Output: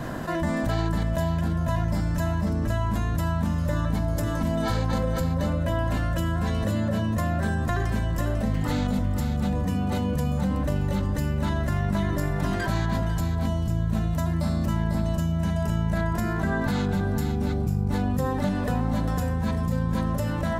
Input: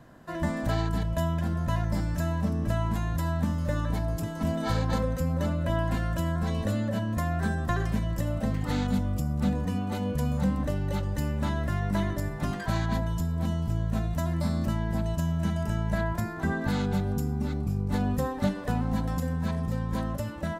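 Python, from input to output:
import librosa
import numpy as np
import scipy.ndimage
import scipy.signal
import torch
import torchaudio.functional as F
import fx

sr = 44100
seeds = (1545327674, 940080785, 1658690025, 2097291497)

p1 = x + fx.echo_single(x, sr, ms=497, db=-8.0, dry=0)
p2 = fx.env_flatten(p1, sr, amount_pct=70)
y = p2 * 10.0 ** (-1.5 / 20.0)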